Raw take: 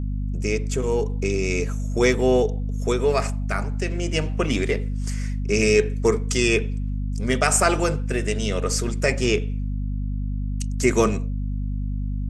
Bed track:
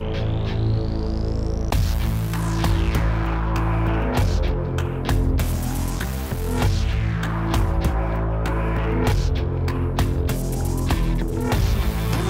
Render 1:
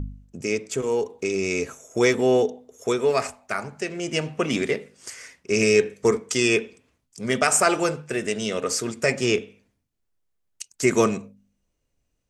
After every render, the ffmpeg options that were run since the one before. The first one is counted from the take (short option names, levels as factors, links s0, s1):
-af "bandreject=f=50:t=h:w=4,bandreject=f=100:t=h:w=4,bandreject=f=150:t=h:w=4,bandreject=f=200:t=h:w=4,bandreject=f=250:t=h:w=4"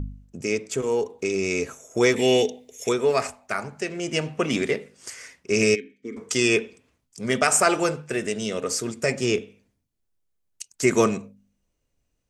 -filter_complex "[0:a]asettb=1/sr,asplit=3[s0][s1][s2];[s0]atrim=end=2.164[s3];[s1]atrim=start=2.16:end=2.89,asetpts=PTS-STARTPTS,afade=t=in:d=0.004:c=qsin,afade=t=out:st=0.726:d=0.004:c=qsin,highshelf=f=1700:t=q:w=3:g=9[s4];[s2]atrim=start=2.886[s5];[s3][s4]acrossfade=d=0.004:c1=hsin:c2=qsin[s6];[s6][s5]acrossfade=d=0.004:c1=qsin:c2=hsin,asplit=3[s7][s8][s9];[s7]afade=t=out:st=5.74:d=0.02[s10];[s8]asplit=3[s11][s12][s13];[s11]bandpass=f=270:t=q:w=8,volume=1[s14];[s12]bandpass=f=2290:t=q:w=8,volume=0.501[s15];[s13]bandpass=f=3010:t=q:w=8,volume=0.355[s16];[s14][s15][s16]amix=inputs=3:normalize=0,afade=t=in:st=5.74:d=0.02,afade=t=out:st=6.16:d=0.02[s17];[s9]afade=t=in:st=6.16:d=0.02[s18];[s10][s17][s18]amix=inputs=3:normalize=0,asettb=1/sr,asplit=3[s19][s20][s21];[s19]atrim=end=8.284[s22];[s20]atrim=start=8.28:end=10.69,asetpts=PTS-STARTPTS,afade=t=in:d=0.004:c=qsin,afade=t=out:st=2.406:d=0.004:c=qsin,equalizer=f=1600:w=0.39:g=-3.5[s23];[s21]atrim=start=10.686[s24];[s22][s23]acrossfade=d=0.004:c1=hsin:c2=qsin[s25];[s25][s24]acrossfade=d=0.004:c1=qsin:c2=hsin"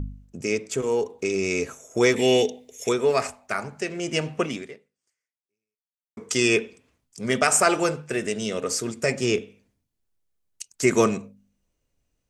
-filter_complex "[0:a]asplit=2[s0][s1];[s0]atrim=end=6.17,asetpts=PTS-STARTPTS,afade=t=out:st=4.41:d=1.76:c=exp[s2];[s1]atrim=start=6.17,asetpts=PTS-STARTPTS,afade=t=in:d=0.004:c=hsin[s3];[s2][s3]concat=n=2:v=0:a=1"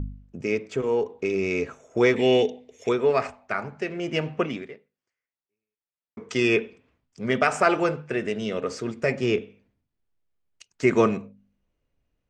-af "lowpass=3000"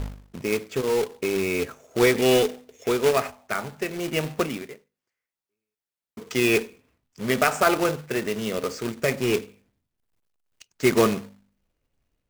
-af "acrusher=bits=2:mode=log:mix=0:aa=0.000001"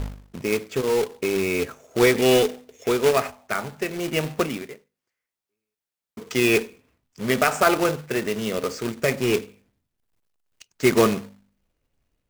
-af "volume=1.19,alimiter=limit=0.708:level=0:latency=1"